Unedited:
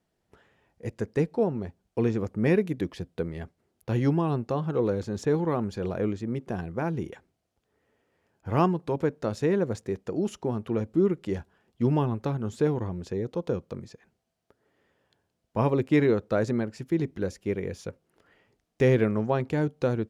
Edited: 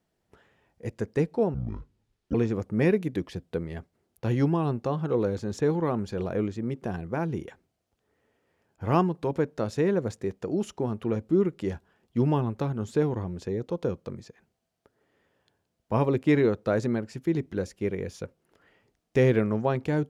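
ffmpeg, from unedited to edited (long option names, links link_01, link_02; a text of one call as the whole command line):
ffmpeg -i in.wav -filter_complex "[0:a]asplit=3[link_01][link_02][link_03];[link_01]atrim=end=1.544[link_04];[link_02]atrim=start=1.54:end=1.99,asetpts=PTS-STARTPTS,asetrate=24696,aresample=44100[link_05];[link_03]atrim=start=1.986[link_06];[link_04][link_05]acrossfade=duration=0.004:curve1=hsin:curve2=hsin[link_07];[link_07][link_06]acrossfade=duration=0.004:curve1=hsin:curve2=hsin" out.wav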